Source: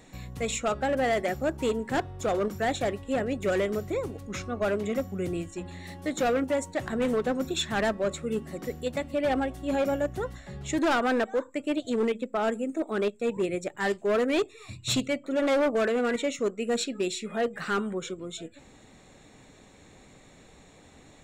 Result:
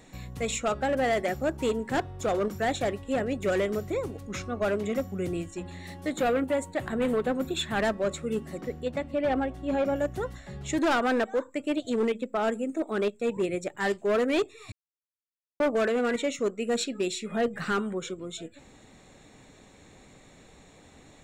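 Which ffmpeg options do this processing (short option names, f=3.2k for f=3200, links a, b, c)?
-filter_complex "[0:a]asettb=1/sr,asplit=3[a][b][c];[a]atrim=end=6.124[d];[b]atrim=start=6.12:end=7.8,asetpts=PTS-STARTPTS,afade=t=in:d=0.004:c=qsin,afade=t=out:st=1.676:d=0.004:c=qsin,equalizer=f=5.7k:t=o:w=0.49:g=-10[e];[c]atrim=start=7.796[f];[d][e]acrossfade=d=0.004:c1=hsin:c2=qsin[g];[g][f]acrossfade=d=0.004:c1=qsin:c2=hsin,asettb=1/sr,asplit=3[h][i][j];[h]atrim=end=8.614[k];[i]atrim=start=8.61:end=9.96,asetpts=PTS-STARTPTS,afade=t=in:d=0.004:c=qsin,afade=t=out:st=1.346:d=0.004:c=qsin,lowpass=f=2.6k:p=1[l];[j]atrim=start=9.956[m];[k][l]acrossfade=d=0.004:c1=hsin:c2=qsin[n];[n][m]acrossfade=d=0.004:c1=qsin:c2=hsin,asettb=1/sr,asplit=3[o][p][q];[o]atrim=end=17.314[r];[p]atrim=start=17.31:end=17.72,asetpts=PTS-STARTPTS,afade=t=in:d=0.004:c=qsin,afade=t=out:st=0.406:d=0.004:c=qsin,bass=f=250:g=7,treble=f=4k:g=0[s];[q]atrim=start=17.716[t];[r][s]acrossfade=d=0.004:c1=hsin:c2=qsin[u];[u][t]acrossfade=d=0.004:c1=qsin:c2=hsin,asplit=3[v][w][x];[v]atrim=end=14.72,asetpts=PTS-STARTPTS,afade=t=out:st=14.716:d=0.004:c=hsin[y];[w]atrim=start=14.72:end=15.6,asetpts=PTS-STARTPTS,volume=0[z];[x]atrim=start=15.6,asetpts=PTS-STARTPTS,afade=t=in:d=0.004:c=hsin[aa];[y][z][aa]concat=n=3:v=0:a=1"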